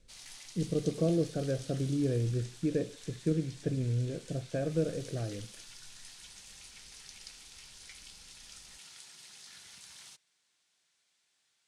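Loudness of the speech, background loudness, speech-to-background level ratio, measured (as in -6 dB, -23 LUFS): -33.5 LUFS, -49.0 LUFS, 15.5 dB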